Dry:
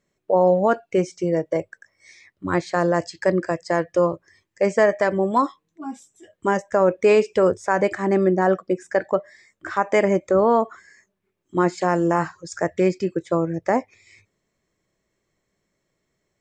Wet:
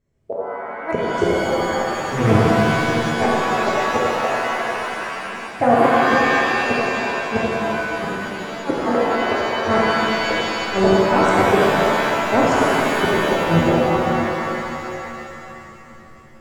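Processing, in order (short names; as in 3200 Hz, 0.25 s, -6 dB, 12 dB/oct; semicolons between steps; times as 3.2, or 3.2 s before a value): resonant low shelf 130 Hz +8.5 dB, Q 1.5; echoes that change speed 0.133 s, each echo +2 st, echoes 3; tilt shelf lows +6 dB, about 700 Hz; flipped gate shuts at -11 dBFS, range -38 dB; AGC gain up to 14.5 dB; shimmer reverb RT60 2.9 s, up +7 st, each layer -2 dB, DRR -5.5 dB; gain -5.5 dB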